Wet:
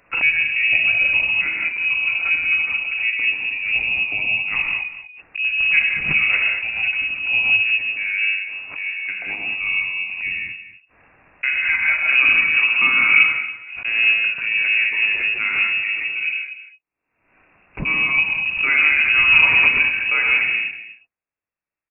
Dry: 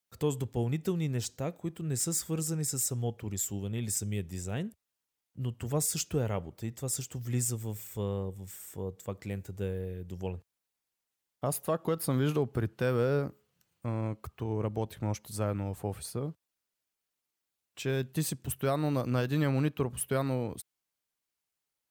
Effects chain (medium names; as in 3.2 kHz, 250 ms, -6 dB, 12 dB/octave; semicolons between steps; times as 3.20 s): gate -55 dBFS, range -11 dB; 15.87–17.87 s: rotary cabinet horn 7 Hz; delay 239 ms -13.5 dB; gated-style reverb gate 240 ms flat, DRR -2.5 dB; frequency inversion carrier 2.7 kHz; swell ahead of each attack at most 71 dB/s; trim +8 dB